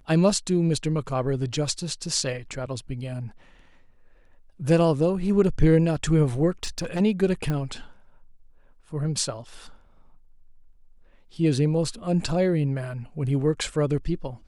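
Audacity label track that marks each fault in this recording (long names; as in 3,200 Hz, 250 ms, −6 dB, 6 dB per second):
6.630000	7.010000	clipping −23.5 dBFS
7.500000	7.500000	click −16 dBFS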